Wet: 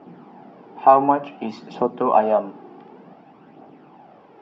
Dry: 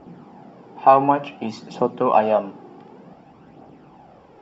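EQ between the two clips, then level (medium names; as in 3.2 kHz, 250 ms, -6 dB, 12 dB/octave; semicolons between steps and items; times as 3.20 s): band-stop 520 Hz, Q 12; dynamic bell 2.8 kHz, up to -7 dB, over -39 dBFS, Q 1; band-pass 190–3800 Hz; +1.0 dB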